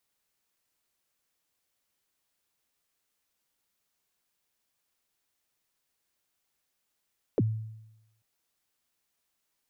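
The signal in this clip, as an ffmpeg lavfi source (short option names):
-f lavfi -i "aevalsrc='0.106*pow(10,-3*t/0.92)*sin(2*PI*(550*0.036/log(110/550)*(exp(log(110/550)*min(t,0.036)/0.036)-1)+110*max(t-0.036,0)))':d=0.84:s=44100"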